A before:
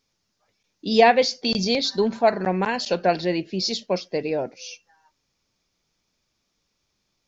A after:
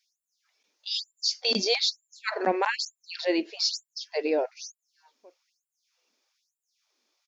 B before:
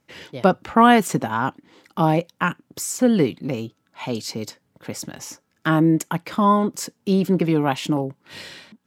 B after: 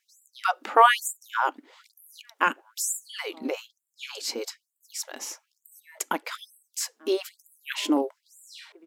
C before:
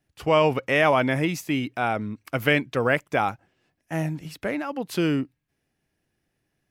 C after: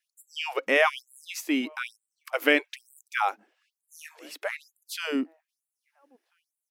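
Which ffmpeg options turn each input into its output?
-filter_complex "[0:a]asplit=2[link_01][link_02];[link_02]adelay=1341,volume=-29dB,highshelf=frequency=4000:gain=-30.2[link_03];[link_01][link_03]amix=inputs=2:normalize=0,afftfilt=real='re*gte(b*sr/1024,210*pow(7200/210,0.5+0.5*sin(2*PI*1.1*pts/sr)))':imag='im*gte(b*sr/1024,210*pow(7200/210,0.5+0.5*sin(2*PI*1.1*pts/sr)))':win_size=1024:overlap=0.75"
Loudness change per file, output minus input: −6.0, −6.5, −3.5 LU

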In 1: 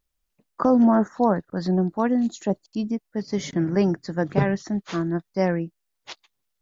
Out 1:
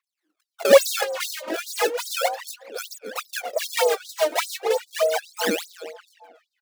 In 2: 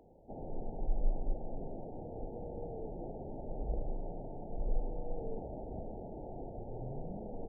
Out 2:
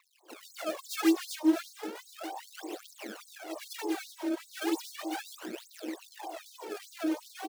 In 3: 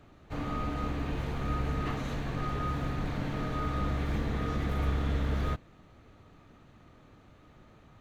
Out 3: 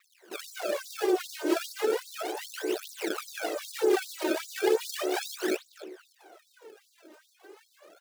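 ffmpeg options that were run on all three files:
-filter_complex "[0:a]afreqshift=300,acrossover=split=110|1000[link_01][link_02][link_03];[link_03]acompressor=threshold=-47dB:ratio=6[link_04];[link_01][link_02][link_04]amix=inputs=3:normalize=0,acrusher=samples=26:mix=1:aa=0.000001:lfo=1:lforange=41.6:lforate=3.3,asplit=2[link_05][link_06];[link_06]adelay=276,lowpass=frequency=3400:poles=1,volume=-9dB,asplit=2[link_07][link_08];[link_08]adelay=276,lowpass=frequency=3400:poles=1,volume=0.33,asplit=2[link_09][link_10];[link_10]adelay=276,lowpass=frequency=3400:poles=1,volume=0.33,asplit=2[link_11][link_12];[link_12]adelay=276,lowpass=frequency=3400:poles=1,volume=0.33[link_13];[link_05][link_07][link_09][link_11][link_13]amix=inputs=5:normalize=0,aphaser=in_gain=1:out_gain=1:delay=3.3:decay=0.75:speed=0.35:type=triangular,aeval=exprs='1*(cos(1*acos(clip(val(0)/1,-1,1)))-cos(1*PI/2))+0.0112*(cos(7*acos(clip(val(0)/1,-1,1)))-cos(7*PI/2))':channel_layout=same,equalizer=frequency=110:width_type=o:width=3:gain=10.5,afftfilt=real='re*gte(b*sr/1024,200*pow(3800/200,0.5+0.5*sin(2*PI*2.5*pts/sr)))':imag='im*gte(b*sr/1024,200*pow(3800/200,0.5+0.5*sin(2*PI*2.5*pts/sr)))':win_size=1024:overlap=0.75,volume=-1dB"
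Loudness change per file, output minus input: +0.5, +8.0, +2.5 LU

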